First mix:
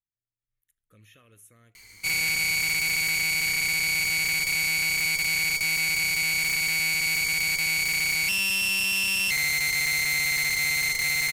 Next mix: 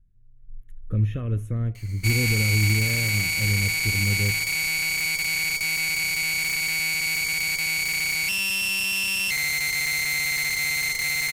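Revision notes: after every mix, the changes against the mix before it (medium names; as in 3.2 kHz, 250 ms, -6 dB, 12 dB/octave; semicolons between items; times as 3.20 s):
speech: remove differentiator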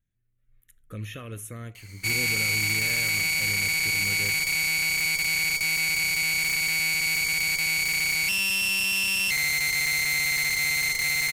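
speech: add tilt EQ +4.5 dB/octave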